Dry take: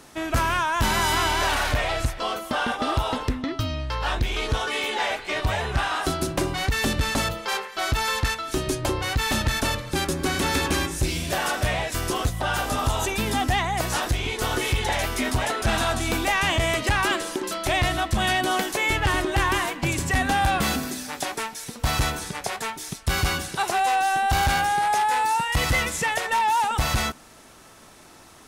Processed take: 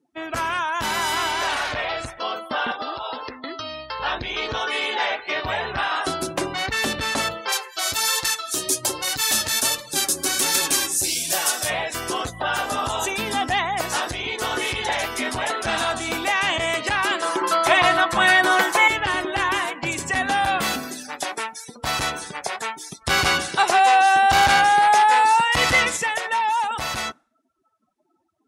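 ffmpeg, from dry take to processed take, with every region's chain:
-filter_complex "[0:a]asettb=1/sr,asplit=3[a][b][c];[a]atrim=end=2.714[d];[b]atrim=start=2.71:end=4,asetpts=PTS-STARTPTS,afade=t=in:d=0.004:c=qsin,afade=t=out:st=1.286:d=0.004:c=qsin,equalizer=f=4.7k:t=o:w=0.71:g=8.5,acrossover=split=360|3000[e][f][g];[e]acompressor=threshold=-39dB:ratio=4[h];[f]acompressor=threshold=-29dB:ratio=4[i];[g]acompressor=threshold=-43dB:ratio=4[j];[h][i][j]amix=inputs=3:normalize=0[k];[c]atrim=start=3.996[l];[d][k]acrossfade=d=0.004:c1=hsin:c2=qsin[m];[m][l]acrossfade=d=0.004:c1=qsin:c2=hsin,asettb=1/sr,asplit=3[n][o][p];[n]atrim=end=7.524[q];[o]atrim=start=7.52:end=11.7,asetpts=PTS-STARTPTS,afade=t=in:d=0.004:c=qsin,afade=t=out:st=4.176:d=0.004:c=qsin,bass=f=250:g=-2,treble=f=4k:g=14,flanger=delay=5.1:depth=6.1:regen=27:speed=1.3:shape=triangular[r];[p]atrim=start=11.696[s];[q][r]acrossfade=d=0.004:c1=hsin:c2=qsin[t];[t][s]acrossfade=d=0.004:c1=qsin:c2=hsin,asettb=1/sr,asplit=3[u][v][w];[u]atrim=end=17.224[x];[v]atrim=start=17.22:end=18.88,asetpts=PTS-STARTPTS,afade=t=in:d=0.004:c=qsin,afade=t=out:st=1.656:d=0.004:c=qsin,equalizer=f=1.1k:w=0.95:g=11,aecho=1:1:5.9:0.66,atrim=end_sample=73206[y];[w]atrim=start=18.876[z];[x][y]acrossfade=d=0.004:c1=hsin:c2=qsin[aa];[aa][z]acrossfade=d=0.004:c1=qsin:c2=hsin,asettb=1/sr,asplit=3[ab][ac][ad];[ab]atrim=end=23.014[ae];[ac]atrim=start=23.01:end=25.97,asetpts=PTS-STARTPTS,afade=t=in:d=0.004:c=qsin,afade=t=out:st=2.956:d=0.004:c=qsin,highshelf=f=10k:g=-7.5,acontrast=27[af];[ad]atrim=start=25.966[ag];[ae][af]acrossfade=d=0.004:c1=hsin:c2=qsin[ah];[ah][ag]acrossfade=d=0.004:c1=qsin:c2=hsin,afftdn=nr=36:nf=-39,highpass=f=420:p=1,dynaudnorm=f=160:g=31:m=3dB"

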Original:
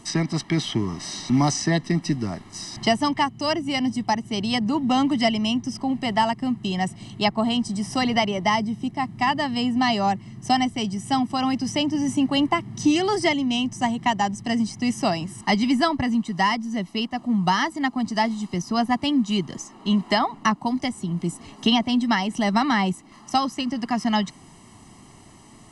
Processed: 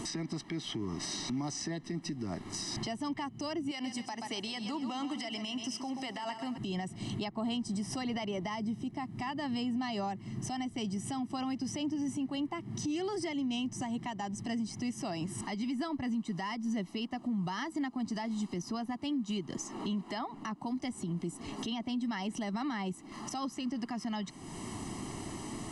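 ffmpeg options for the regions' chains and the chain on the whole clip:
-filter_complex "[0:a]asettb=1/sr,asplit=3[a][b][c];[a]atrim=end=3.714[d];[b]atrim=start=3.71:end=6.58,asetpts=PTS-STARTPTS,afade=t=in:d=0.004:c=qsin,afade=t=out:st=2.866:d=0.004:c=qsin,highpass=f=930:p=1,acompressor=threshold=-26dB:ratio=6:attack=3.2:release=140:knee=1:detection=peak,aecho=1:1:130|260|390|520:0.266|0.112|0.0469|0.0197,atrim=end_sample=126567[e];[c]atrim=start=6.576[f];[d][e]acrossfade=d=0.004:c1=hsin:c2=qsin[g];[g][f]acrossfade=d=0.004:c1=qsin:c2=hsin,equalizer=f=330:t=o:w=0.84:g=5.5,acompressor=threshold=-41dB:ratio=2.5,alimiter=level_in=10dB:limit=-24dB:level=0:latency=1:release=153,volume=-10dB,volume=6dB"

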